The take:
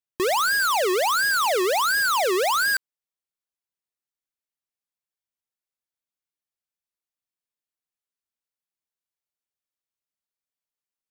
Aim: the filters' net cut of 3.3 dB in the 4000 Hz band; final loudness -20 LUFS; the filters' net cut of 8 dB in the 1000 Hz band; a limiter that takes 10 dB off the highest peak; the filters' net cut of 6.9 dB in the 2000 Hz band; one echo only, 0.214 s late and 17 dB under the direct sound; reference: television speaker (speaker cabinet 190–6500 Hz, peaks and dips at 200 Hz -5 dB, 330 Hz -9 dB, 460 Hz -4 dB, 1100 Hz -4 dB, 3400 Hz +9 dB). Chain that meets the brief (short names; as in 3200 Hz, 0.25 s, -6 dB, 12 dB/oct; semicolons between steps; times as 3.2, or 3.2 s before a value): bell 1000 Hz -6.5 dB; bell 2000 Hz -5 dB; bell 4000 Hz -7.5 dB; limiter -30.5 dBFS; speaker cabinet 190–6500 Hz, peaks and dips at 200 Hz -5 dB, 330 Hz -9 dB, 460 Hz -4 dB, 1100 Hz -4 dB, 3400 Hz +9 dB; echo 0.214 s -17 dB; gain +16.5 dB